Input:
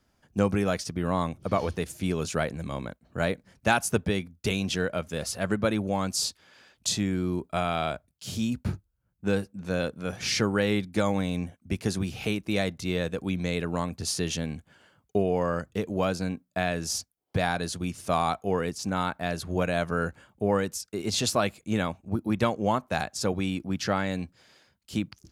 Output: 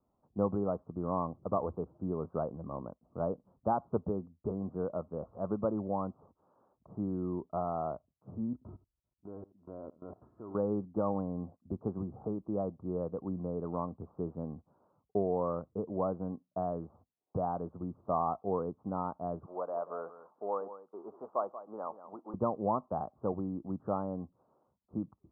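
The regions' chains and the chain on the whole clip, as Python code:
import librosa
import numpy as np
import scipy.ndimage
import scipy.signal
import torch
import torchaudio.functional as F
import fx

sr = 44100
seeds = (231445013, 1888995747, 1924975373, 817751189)

y = fx.chain(x, sr, fx.comb(ms=3.0, depth=0.5),
    fx.echo_single(ms=83, db=-18.0),
    fx.level_steps(step_db=19), at=(8.53, 10.55))
y = fx.chain(y, sr, fx.law_mismatch(coded='mu'),
    fx.highpass(hz=600.0, slope=12),
    fx.echo_single(ms=183, db=-13.0), at=(19.46, 22.34))
y = scipy.signal.sosfilt(scipy.signal.butter(12, 1200.0, 'lowpass', fs=sr, output='sos'), y)
y = fx.low_shelf(y, sr, hz=140.0, db=-9.0)
y = y * librosa.db_to_amplitude(-4.5)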